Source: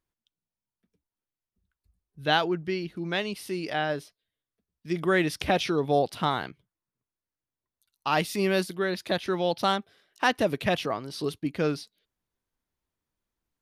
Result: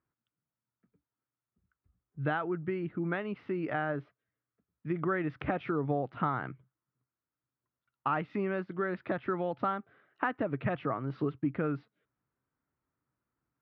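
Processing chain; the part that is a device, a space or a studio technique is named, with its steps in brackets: bass amplifier (compressor 4:1, threshold -31 dBFS, peak gain reduction 11.5 dB; speaker cabinet 73–2100 Hz, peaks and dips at 130 Hz +10 dB, 280 Hz +5 dB, 1300 Hz +8 dB)

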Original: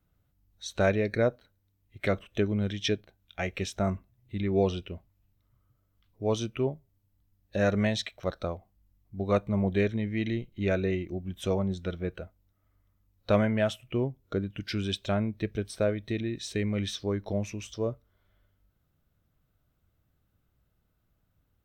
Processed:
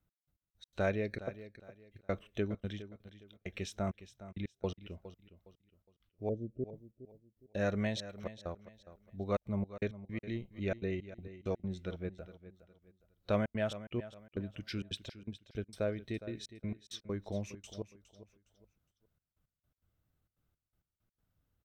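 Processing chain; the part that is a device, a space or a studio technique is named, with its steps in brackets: 6.29–6.71 elliptic low-pass 600 Hz, stop band 40 dB; trance gate with a delay (step gate "x..x..x.xxxxx.x" 165 bpm -60 dB; feedback echo 0.412 s, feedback 30%, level -14.5 dB); gain -7.5 dB

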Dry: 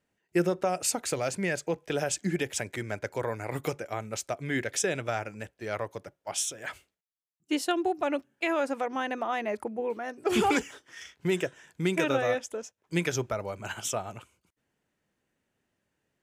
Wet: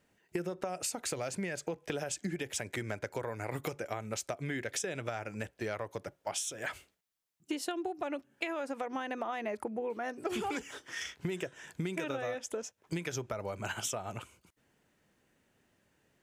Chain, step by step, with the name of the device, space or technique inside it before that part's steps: serial compression, leveller first (compressor 3:1, threshold -29 dBFS, peak gain reduction 7 dB; compressor 4:1, threshold -42 dBFS, peak gain reduction 13.5 dB); gain +7 dB

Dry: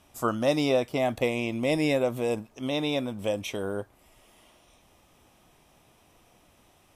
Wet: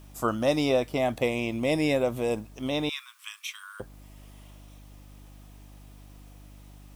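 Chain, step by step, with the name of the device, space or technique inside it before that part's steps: video cassette with head-switching buzz (buzz 50 Hz, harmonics 6, -49 dBFS -6 dB/oct; white noise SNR 34 dB); 2.89–3.8 steep high-pass 1100 Hz 72 dB/oct

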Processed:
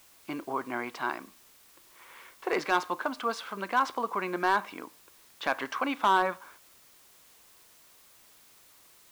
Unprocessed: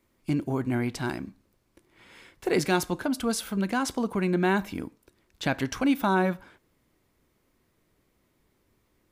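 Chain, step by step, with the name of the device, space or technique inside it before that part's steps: drive-through speaker (BPF 500–3400 Hz; bell 1100 Hz +10 dB 0.48 oct; hard clip -16.5 dBFS, distortion -16 dB; white noise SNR 25 dB)

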